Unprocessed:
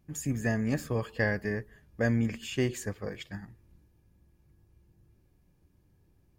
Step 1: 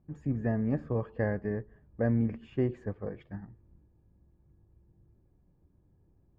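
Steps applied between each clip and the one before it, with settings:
low-pass filter 1,000 Hz 12 dB per octave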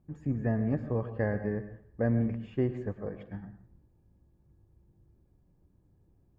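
dense smooth reverb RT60 0.51 s, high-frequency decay 0.85×, pre-delay 95 ms, DRR 11 dB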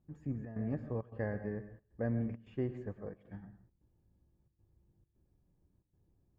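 gate pattern "xxxx.xxxx.xx" 134 BPM −12 dB
level −7 dB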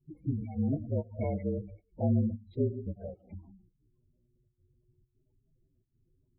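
partials spread apart or drawn together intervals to 114%
flanger swept by the level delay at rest 8.4 ms, full sweep at −36 dBFS
gate on every frequency bin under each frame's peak −20 dB strong
level +8.5 dB

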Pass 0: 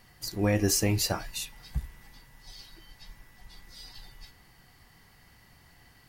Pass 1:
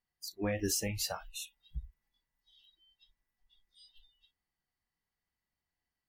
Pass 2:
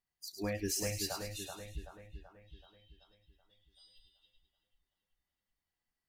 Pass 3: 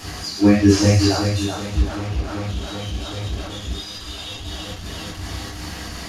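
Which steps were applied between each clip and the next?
parametric band 120 Hz −8 dB 0.6 octaves; noise reduction from a noise print of the clip's start 26 dB; level −6.5 dB
echo with a time of its own for lows and highs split 2,500 Hz, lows 381 ms, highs 105 ms, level −6 dB; level −3 dB
linear delta modulator 64 kbit/s, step −42 dBFS; flanger 0.93 Hz, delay 2.3 ms, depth 2.6 ms, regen −68%; convolution reverb, pre-delay 3 ms, DRR −5 dB; level +8 dB

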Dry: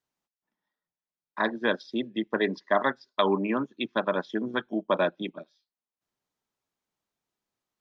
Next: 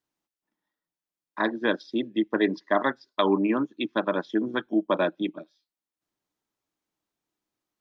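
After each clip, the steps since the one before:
parametric band 310 Hz +9.5 dB 0.26 octaves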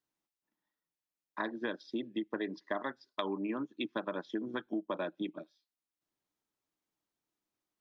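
downward compressor 6 to 1, threshold −28 dBFS, peak gain reduction 11 dB
level −4.5 dB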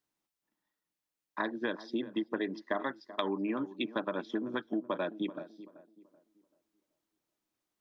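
tape delay 383 ms, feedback 37%, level −14 dB, low-pass 1,200 Hz
level +2.5 dB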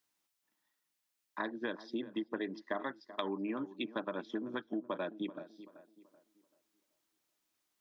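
one half of a high-frequency compander encoder only
level −4 dB

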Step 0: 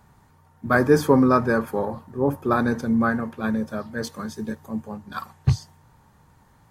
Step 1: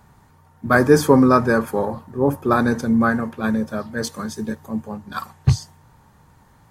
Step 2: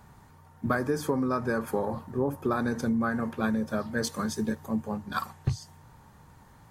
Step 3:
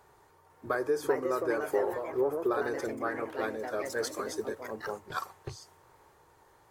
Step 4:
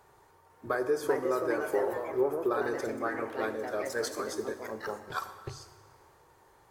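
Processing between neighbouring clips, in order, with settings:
dynamic equaliser 8,100 Hz, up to +5 dB, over −49 dBFS, Q 0.81; level +3.5 dB
downward compressor 16 to 1, threshold −22 dBFS, peak gain reduction 16 dB; level −1.5 dB
delay with pitch and tempo change per echo 501 ms, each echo +3 semitones, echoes 2, each echo −6 dB; low shelf with overshoot 290 Hz −9.5 dB, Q 3; level −4.5 dB
dense smooth reverb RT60 1.6 s, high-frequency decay 0.85×, DRR 9.5 dB

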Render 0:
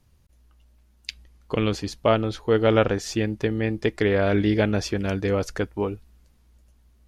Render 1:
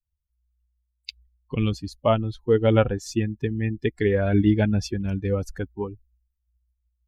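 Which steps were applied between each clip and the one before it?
spectral dynamics exaggerated over time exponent 2
low-shelf EQ 440 Hz +6.5 dB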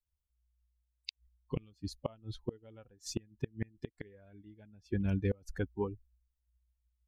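gate with flip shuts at −16 dBFS, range −31 dB
level −5 dB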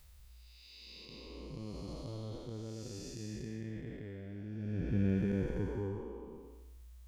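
spectrum smeared in time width 625 ms
reversed playback
upward compression, threshold −47 dBFS
reversed playback
flanger 0.57 Hz, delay 5 ms, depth 4.3 ms, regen −57%
level +12 dB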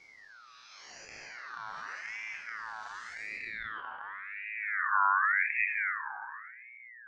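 spectral magnitudes quantised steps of 15 dB
low-pass filter sweep 3,100 Hz → 310 Hz, 0:03.21–0:05.01
ring modulator whose carrier an LFO sweeps 1,700 Hz, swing 30%, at 0.89 Hz
level +5 dB

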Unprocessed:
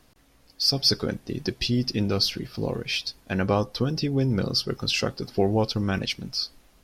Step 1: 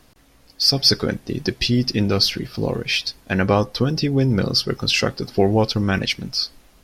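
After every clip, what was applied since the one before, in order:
dynamic equaliser 1,900 Hz, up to +5 dB, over −44 dBFS, Q 2.4
level +5.5 dB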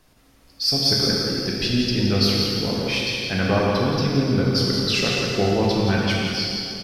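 single-tap delay 170 ms −7 dB
dense smooth reverb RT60 2.7 s, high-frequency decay 0.9×, DRR −4 dB
level −6.5 dB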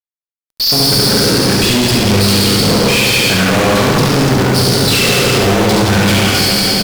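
Savitzky-Golay smoothing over 15 samples
fuzz pedal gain 44 dB, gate −42 dBFS
single-tap delay 70 ms −3.5 dB
level +1 dB

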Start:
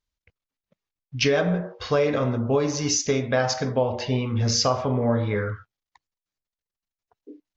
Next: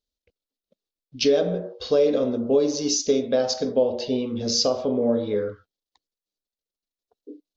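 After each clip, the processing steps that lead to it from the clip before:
graphic EQ with 10 bands 125 Hz −12 dB, 250 Hz +7 dB, 500 Hz +9 dB, 1,000 Hz −7 dB, 2,000 Hz −10 dB, 4,000 Hz +9 dB
level −4 dB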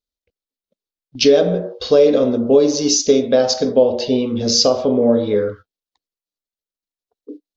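noise gate −42 dBFS, range −11 dB
level +7.5 dB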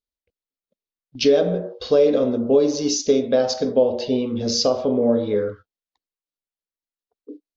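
high-shelf EQ 4,800 Hz −6 dB
level −4 dB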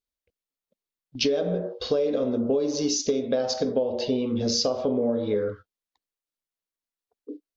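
downward compressor, threshold −21 dBFS, peak gain reduction 9.5 dB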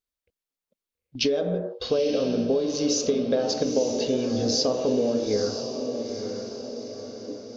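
feedback delay with all-pass diffusion 915 ms, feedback 51%, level −7 dB

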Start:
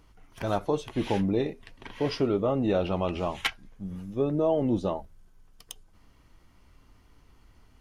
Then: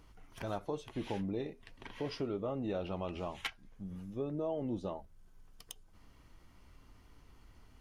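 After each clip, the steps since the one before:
downward compressor 1.5 to 1, threshold −50 dBFS, peak gain reduction 10.5 dB
level −1.5 dB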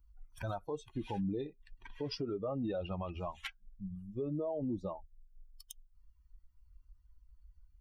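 spectral dynamics exaggerated over time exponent 2
brickwall limiter −37 dBFS, peak gain reduction 11 dB
level +7.5 dB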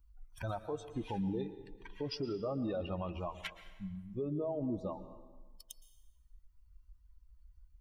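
dense smooth reverb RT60 1.3 s, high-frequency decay 0.75×, pre-delay 105 ms, DRR 12 dB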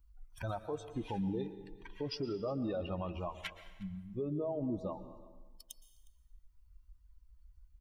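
single-tap delay 360 ms −23 dB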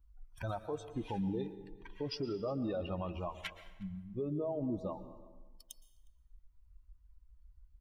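one half of a high-frequency compander decoder only

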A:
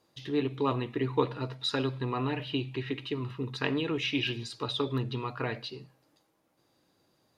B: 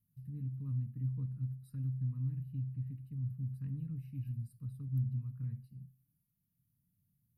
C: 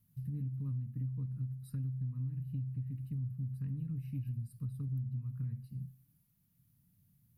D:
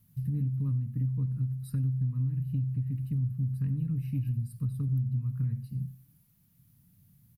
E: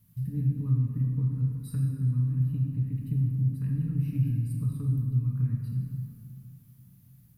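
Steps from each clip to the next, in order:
inverse Chebyshev band-stop filter 340–6,900 Hz, stop band 40 dB; level +1 dB
downward compressor, threshold −44 dBFS, peak gain reduction 13.5 dB; level +8.5 dB
single-tap delay 91 ms −20.5 dB; level +8 dB
dense smooth reverb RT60 2.5 s, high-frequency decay 0.55×, DRR −1.5 dB

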